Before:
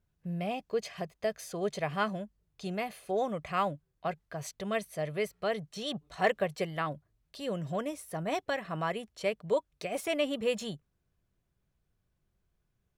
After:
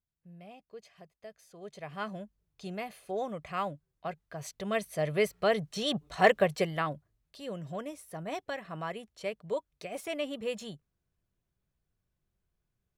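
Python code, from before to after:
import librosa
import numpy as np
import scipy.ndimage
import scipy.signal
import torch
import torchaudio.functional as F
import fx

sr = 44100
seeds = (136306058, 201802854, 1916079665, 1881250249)

y = fx.gain(x, sr, db=fx.line((1.49, -16.0), (2.19, -3.5), (4.21, -3.5), (5.19, 5.0), (6.52, 5.0), (7.38, -4.5)))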